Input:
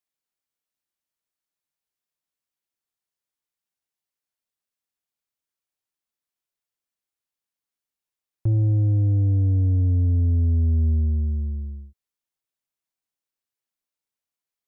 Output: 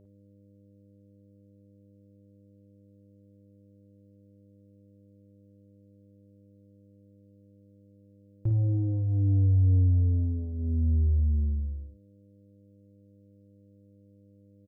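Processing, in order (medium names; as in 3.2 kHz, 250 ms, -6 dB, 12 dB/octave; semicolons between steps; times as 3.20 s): mains buzz 100 Hz, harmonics 6, -52 dBFS -4 dB/octave; early reflections 41 ms -11 dB, 54 ms -7 dB; trim -5.5 dB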